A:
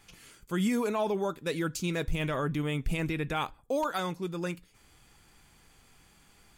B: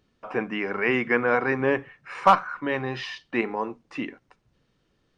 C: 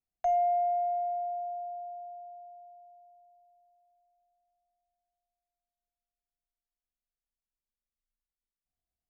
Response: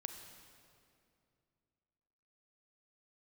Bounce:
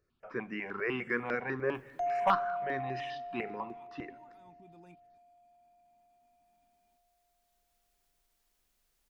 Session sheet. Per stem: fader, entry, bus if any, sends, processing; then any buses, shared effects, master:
-13.0 dB, 0.40 s, no send, level held to a coarse grid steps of 21 dB; small resonant body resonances 250/900/2400 Hz, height 16 dB, ringing for 45 ms; upward expansion 1.5:1, over -49 dBFS; auto duck -9 dB, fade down 1.75 s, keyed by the second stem
-9.5 dB, 0.00 s, send -9.5 dB, stepped phaser 10 Hz 860–3400 Hz
-6.0 dB, 1.75 s, no send, upward compressor, threshold -50 dBFS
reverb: on, RT60 2.5 s, pre-delay 31 ms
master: peaking EQ 380 Hz +4.5 dB 0.2 oct

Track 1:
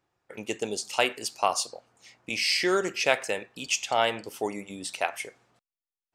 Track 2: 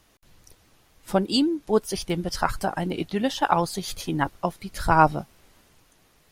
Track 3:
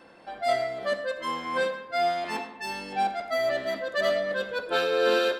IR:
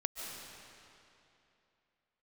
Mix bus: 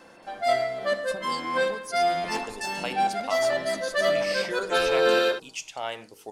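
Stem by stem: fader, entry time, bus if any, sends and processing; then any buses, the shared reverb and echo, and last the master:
-8.5 dB, 1.85 s, no send, none
-15.5 dB, 0.00 s, send -13.5 dB, high-order bell 6.4 kHz +14.5 dB; compression, threshold -23 dBFS, peak gain reduction 14 dB
+2.0 dB, 0.00 s, no send, none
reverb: on, RT60 2.9 s, pre-delay 105 ms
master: de-hum 46.49 Hz, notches 10

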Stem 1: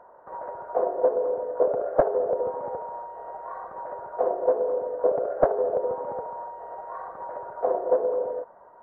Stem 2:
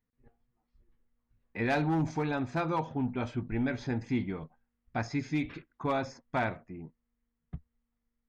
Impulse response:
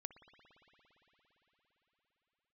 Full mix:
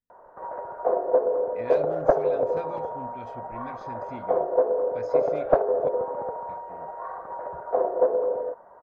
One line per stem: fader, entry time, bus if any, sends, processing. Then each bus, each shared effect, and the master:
+1.0 dB, 0.10 s, no send, none
-10.5 dB, 0.00 s, muted 5.89–6.49 s, no send, none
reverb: none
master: none

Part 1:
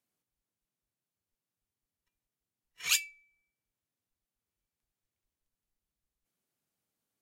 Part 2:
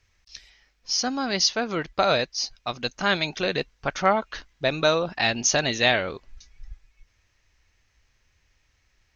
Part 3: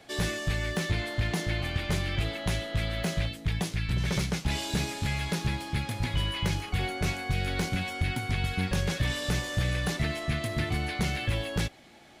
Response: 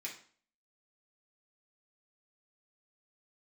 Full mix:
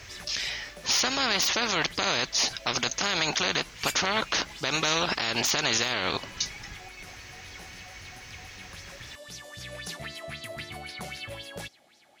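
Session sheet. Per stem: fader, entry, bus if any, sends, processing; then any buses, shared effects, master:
-6.0 dB, 0.95 s, no bus, no send, none
+2.0 dB, 0.00 s, bus A, no send, de-esser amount 40%; spectrum-flattening compressor 4:1
-12.5 dB, 0.00 s, bus A, no send, treble shelf 5.3 kHz +10.5 dB; sweeping bell 3.8 Hz 570–5900 Hz +15 dB; auto duck -9 dB, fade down 0.25 s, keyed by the second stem
bus A: 0.0 dB, high-pass 120 Hz 6 dB/octave; peak limiter -14 dBFS, peak gain reduction 11 dB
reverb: none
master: none

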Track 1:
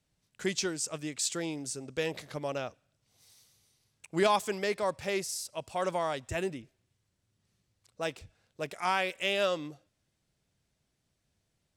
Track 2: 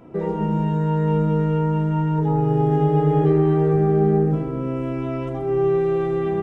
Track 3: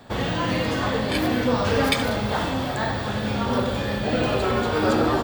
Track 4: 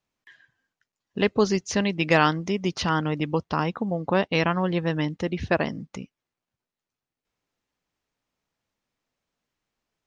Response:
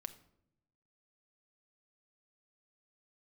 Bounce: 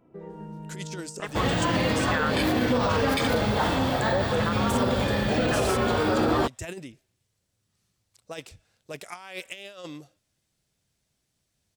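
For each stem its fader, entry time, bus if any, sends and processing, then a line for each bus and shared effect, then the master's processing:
-3.5 dB, 0.30 s, no send, treble shelf 3.8 kHz +7 dB; compressor with a negative ratio -33 dBFS, ratio -0.5
-15.5 dB, 0.00 s, no send, compression, threshold -20 dBFS, peak gain reduction 7.5 dB; auto duck -10 dB, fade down 0.20 s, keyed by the fourth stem
+1.0 dB, 1.25 s, no send, none
+2.5 dB, 0.00 s, no send, step-sequenced band-pass 2.5 Hz 440–1500 Hz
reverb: none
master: peak limiter -14.5 dBFS, peak gain reduction 9.5 dB

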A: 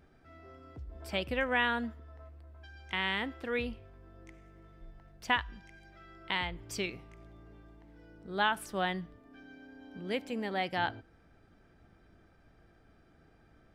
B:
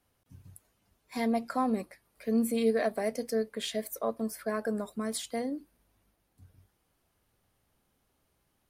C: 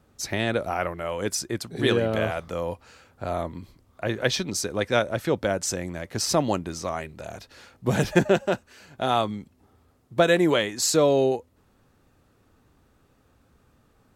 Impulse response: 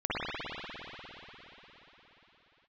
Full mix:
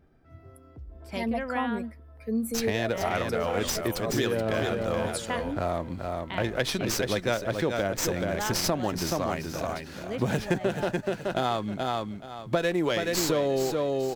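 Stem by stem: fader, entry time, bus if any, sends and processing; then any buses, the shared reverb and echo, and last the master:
-2.5 dB, 0.00 s, no send, no echo send, tilt shelf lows +4 dB
+3.0 dB, 0.00 s, no send, no echo send, expander on every frequency bin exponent 1.5
+3.0 dB, 2.35 s, no send, echo send -7 dB, sliding maximum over 3 samples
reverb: none
echo: feedback delay 427 ms, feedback 21%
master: compression 4:1, threshold -24 dBFS, peak gain reduction 12.5 dB

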